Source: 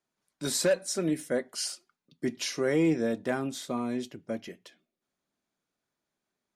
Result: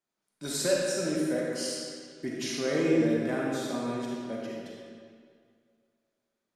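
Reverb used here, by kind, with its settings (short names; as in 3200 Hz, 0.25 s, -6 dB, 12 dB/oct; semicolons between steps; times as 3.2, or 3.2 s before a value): digital reverb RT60 2.1 s, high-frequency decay 0.8×, pre-delay 5 ms, DRR -4 dB; gain -5 dB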